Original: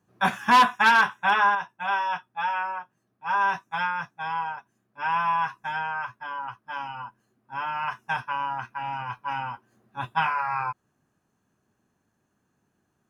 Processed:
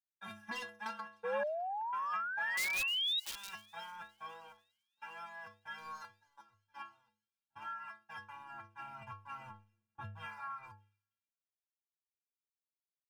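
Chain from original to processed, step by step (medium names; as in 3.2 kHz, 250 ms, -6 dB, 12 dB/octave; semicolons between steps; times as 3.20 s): 5.78–6.60 s: median filter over 15 samples; bass shelf 470 Hz +5 dB; level held to a coarse grid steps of 16 dB; waveshaping leveller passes 1; inharmonic resonator 100 Hz, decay 0.73 s, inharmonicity 0.03; 2.57–3.49 s: integer overflow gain 43 dB; compression 16:1, threshold -42 dBFS, peak gain reduction 13.5 dB; 1.43–1.93 s: inverted gate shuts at -50 dBFS, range -35 dB; 1.23–3.20 s: painted sound rise 470–3900 Hz -42 dBFS; feedback echo behind a high-pass 304 ms, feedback 78%, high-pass 3.7 kHz, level -17.5 dB; three bands expanded up and down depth 100%; trim +1 dB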